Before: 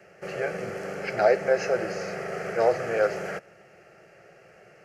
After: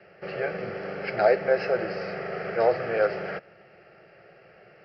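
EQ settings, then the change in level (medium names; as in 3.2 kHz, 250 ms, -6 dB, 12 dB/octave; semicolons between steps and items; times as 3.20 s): steep low-pass 5.2 kHz 96 dB/octave; 0.0 dB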